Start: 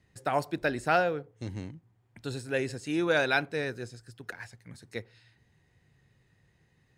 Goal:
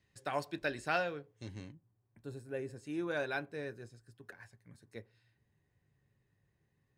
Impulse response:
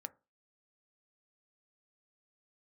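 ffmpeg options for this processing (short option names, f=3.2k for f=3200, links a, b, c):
-filter_complex "[0:a]asetnsamples=n=441:p=0,asendcmd='1.72 equalizer g -12;2.76 equalizer g -5.5',equalizer=f=4k:t=o:w=2.6:g=6[a];[1:a]atrim=start_sample=2205,atrim=end_sample=3969,asetrate=88200,aresample=44100[b];[a][b]afir=irnorm=-1:irlink=0,volume=1dB"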